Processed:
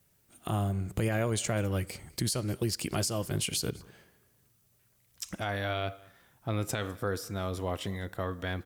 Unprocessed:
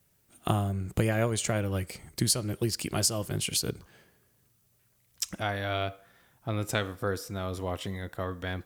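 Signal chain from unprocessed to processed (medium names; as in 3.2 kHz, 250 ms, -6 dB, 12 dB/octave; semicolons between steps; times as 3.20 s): peak limiter -20.5 dBFS, peak gain reduction 9.5 dB; delay 203 ms -24 dB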